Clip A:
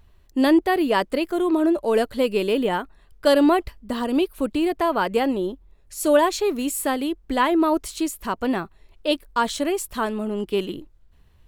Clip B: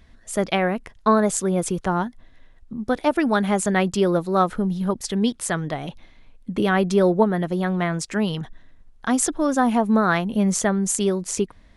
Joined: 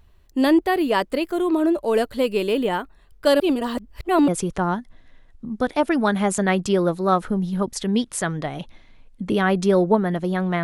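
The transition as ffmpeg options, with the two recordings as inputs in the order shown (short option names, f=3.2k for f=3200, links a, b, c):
-filter_complex "[0:a]apad=whole_dur=10.63,atrim=end=10.63,asplit=2[a][b];[a]atrim=end=3.402[c];[b]atrim=start=3.398:end=4.282,asetpts=PTS-STARTPTS,areverse[d];[1:a]atrim=start=1.558:end=7.91[e];[c][d]acrossfade=d=0.004:c1=hsin:c2=hsin[f];[f][e]acrossfade=d=0.004:c1=hsin:c2=hsin"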